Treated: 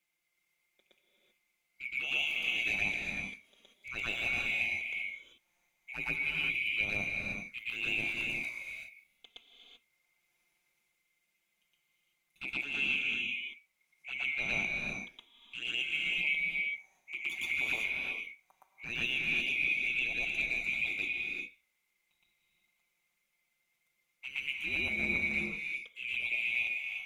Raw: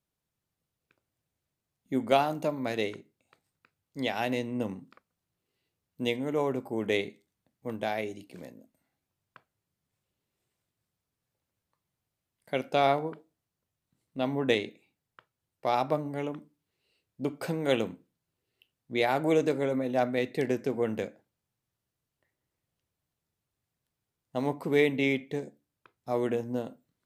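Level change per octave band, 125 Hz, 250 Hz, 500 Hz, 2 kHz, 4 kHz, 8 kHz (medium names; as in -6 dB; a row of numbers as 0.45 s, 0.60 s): -12.0 dB, -15.5 dB, -22.5 dB, +8.0 dB, +3.0 dB, no reading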